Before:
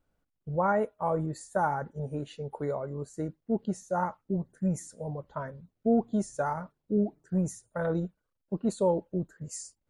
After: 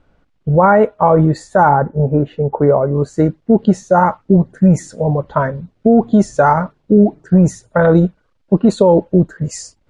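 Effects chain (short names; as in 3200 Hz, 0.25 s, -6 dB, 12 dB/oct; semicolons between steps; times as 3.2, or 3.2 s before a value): LPF 3800 Hz 12 dB/oct, from 1.69 s 1200 Hz, from 2.95 s 4300 Hz; maximiser +21.5 dB; gain -1 dB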